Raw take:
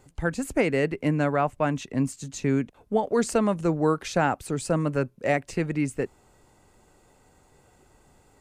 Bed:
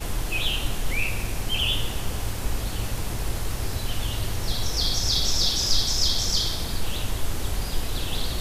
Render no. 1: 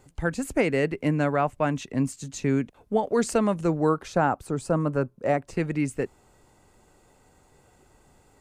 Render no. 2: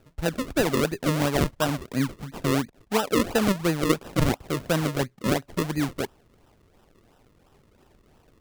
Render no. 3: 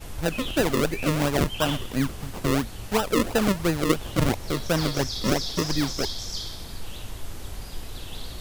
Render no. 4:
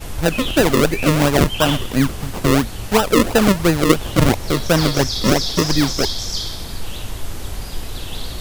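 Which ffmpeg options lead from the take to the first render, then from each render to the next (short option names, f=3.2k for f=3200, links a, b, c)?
-filter_complex "[0:a]asettb=1/sr,asplit=3[a][b][c];[a]atrim=end=3.894[d];[b]atrim=start=3.89:end=5.57,asetpts=PTS-STARTPTS,afade=t=in:d=0.004:c=qsin,afade=t=out:st=1.676:d=0.004:c=qsin,highshelf=f=1.6k:t=q:w=1.5:g=-6[e];[c]atrim=start=5.566[f];[d][e]acrossfade=d=0.004:c1=hsin:c2=qsin[g];[g][f]acrossfade=d=0.004:c1=qsin:c2=hsin"
-af "acrusher=samples=39:mix=1:aa=0.000001:lfo=1:lforange=39:lforate=2.9"
-filter_complex "[1:a]volume=-9dB[a];[0:a][a]amix=inputs=2:normalize=0"
-af "volume=8.5dB,alimiter=limit=-2dB:level=0:latency=1"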